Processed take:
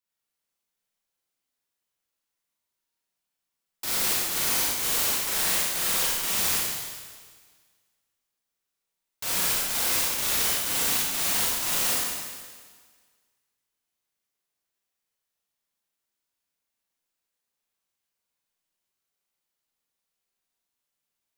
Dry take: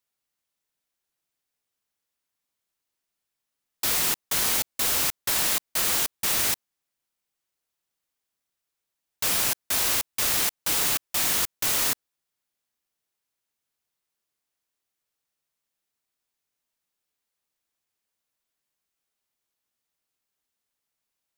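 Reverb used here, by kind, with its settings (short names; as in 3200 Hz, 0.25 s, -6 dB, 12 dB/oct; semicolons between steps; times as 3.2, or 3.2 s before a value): Schroeder reverb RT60 1.6 s, combs from 33 ms, DRR -7 dB; gain -8 dB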